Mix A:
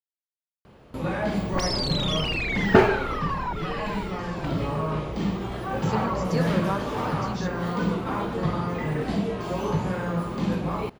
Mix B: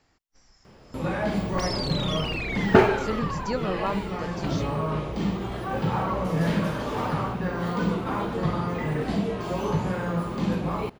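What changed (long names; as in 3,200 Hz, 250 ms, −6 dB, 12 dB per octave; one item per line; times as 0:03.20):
speech: entry −2.85 s
second sound −4.0 dB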